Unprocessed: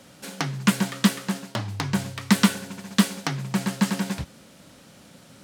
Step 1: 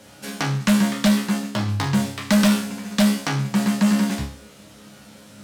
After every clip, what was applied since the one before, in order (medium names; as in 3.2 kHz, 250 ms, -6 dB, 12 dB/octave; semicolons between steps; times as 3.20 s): chord resonator C#2 fifth, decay 0.44 s; sine folder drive 8 dB, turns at -16.5 dBFS; trim +4.5 dB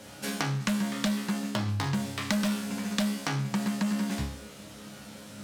compression, threshold -27 dBFS, peak gain reduction 12 dB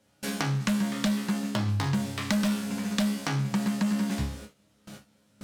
bass shelf 260 Hz +3.5 dB; gate with hold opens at -31 dBFS